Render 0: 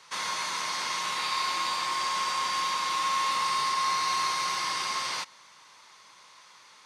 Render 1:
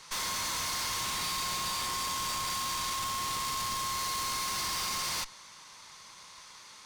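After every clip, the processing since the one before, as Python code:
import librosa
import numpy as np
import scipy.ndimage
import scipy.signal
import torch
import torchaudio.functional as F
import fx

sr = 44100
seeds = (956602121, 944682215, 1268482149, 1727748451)

y = fx.tube_stage(x, sr, drive_db=39.0, bias=0.75)
y = fx.bass_treble(y, sr, bass_db=7, treble_db=6)
y = y * librosa.db_to_amplitude(5.0)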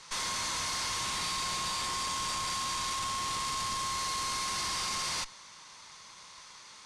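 y = scipy.signal.sosfilt(scipy.signal.butter(4, 10000.0, 'lowpass', fs=sr, output='sos'), x)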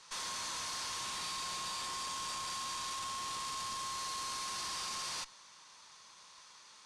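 y = fx.low_shelf(x, sr, hz=180.0, db=-8.0)
y = fx.notch(y, sr, hz=2100.0, q=13.0)
y = y * librosa.db_to_amplitude(-6.0)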